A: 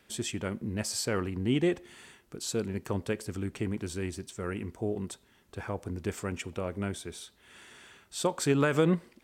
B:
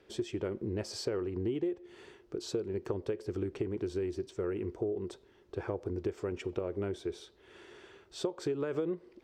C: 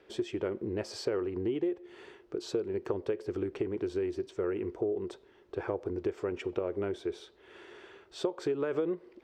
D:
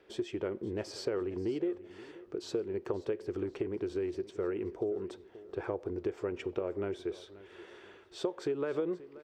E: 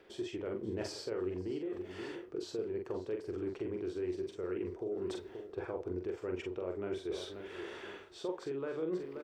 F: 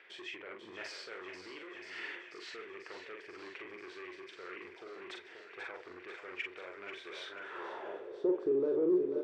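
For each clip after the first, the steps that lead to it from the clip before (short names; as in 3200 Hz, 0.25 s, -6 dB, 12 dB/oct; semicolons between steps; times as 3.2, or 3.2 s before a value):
EQ curve 110 Hz 0 dB, 170 Hz -4 dB, 240 Hz -5 dB, 360 Hz +11 dB, 660 Hz +1 dB, 2000 Hz -5 dB, 5300 Hz -5 dB, 8800 Hz -17 dB; compressor 12:1, threshold -30 dBFS, peak gain reduction 17 dB
tone controls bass -7 dB, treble -7 dB; gain +3.5 dB
feedback echo 0.531 s, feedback 41%, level -18 dB; gain -2 dB
reverse; compressor 6:1, threshold -42 dBFS, peak gain reduction 15 dB; reverse; doubler 44 ms -4 dB; gain +5.5 dB
thinning echo 0.489 s, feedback 78%, high-pass 780 Hz, level -8 dB; soft clip -33.5 dBFS, distortion -15 dB; band-pass sweep 2100 Hz -> 380 Hz, 7.19–8.25; gain +12 dB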